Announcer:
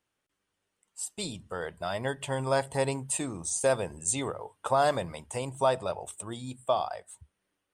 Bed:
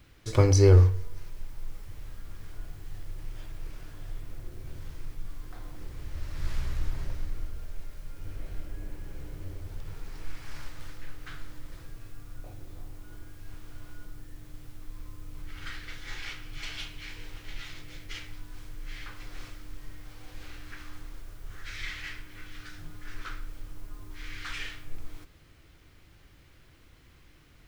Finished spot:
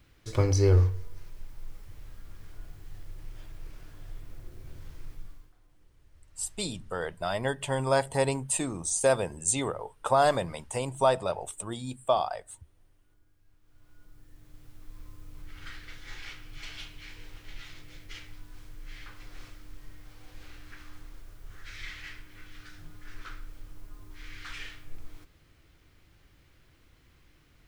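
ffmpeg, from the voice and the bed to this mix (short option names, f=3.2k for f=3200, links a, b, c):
-filter_complex "[0:a]adelay=5400,volume=2dB[a];[1:a]volume=14dB,afade=t=out:st=5.15:d=0.38:silence=0.125893,afade=t=in:st=13.61:d=1.4:silence=0.125893[b];[a][b]amix=inputs=2:normalize=0"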